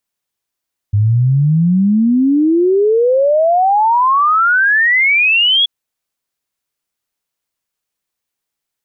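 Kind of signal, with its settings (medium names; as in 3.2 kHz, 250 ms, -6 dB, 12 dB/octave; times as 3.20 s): log sweep 100 Hz -> 3.4 kHz 4.73 s -8.5 dBFS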